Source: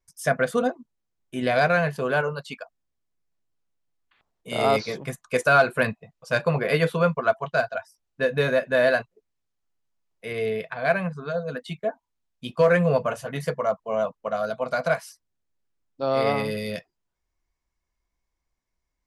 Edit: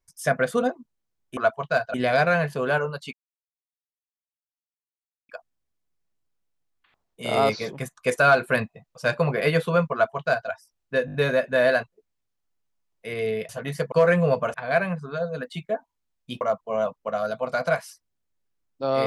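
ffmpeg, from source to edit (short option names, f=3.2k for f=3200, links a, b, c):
-filter_complex "[0:a]asplit=12[a][b][c][d][e][f][g][h][i][j][k][l];[a]atrim=end=1.372[m];[b]atrim=start=7.198:end=7.772[n];[c]atrim=start=1.368:end=2.56,asetpts=PTS-STARTPTS,afade=t=out:st=1.188:d=0.004:c=hsin,apad=pad_dur=2.16[o];[d]atrim=start=2.56:end=8.352,asetpts=PTS-STARTPTS,afade=t=in:d=0.004:c=hsin[p];[e]atrim=start=8.328:end=8.352[q];[f]atrim=start=8.328:end=8.352[r];[g]atrim=start=8.328:end=8.352[s];[h]atrim=start=8.328:end=10.682[t];[i]atrim=start=13.168:end=13.602[u];[j]atrim=start=12.548:end=13.172[v];[k]atrim=start=10.678:end=12.552[w];[l]atrim=start=13.598[x];[m][n]acrossfade=d=0.004:c1=hsin:c2=hsin[y];[o][p]concat=n=2:v=0:a=1[z];[y][z]acrossfade=d=0.004:c1=hsin:c2=hsin[aa];[aa][q]acrossfade=d=0.004:c1=hsin:c2=hsin[ab];[ab][r]acrossfade=d=0.004:c1=hsin:c2=hsin[ac];[ac][s]acrossfade=d=0.004:c1=hsin:c2=hsin[ad];[ad][t]acrossfade=d=0.004:c1=hsin:c2=hsin[ae];[ae][u]acrossfade=d=0.004:c1=hsin:c2=hsin[af];[af][v]acrossfade=d=0.004:c1=hsin:c2=hsin[ag];[ag][w]acrossfade=d=0.004:c1=hsin:c2=hsin[ah];[ah][x]acrossfade=d=0.004:c1=hsin:c2=hsin"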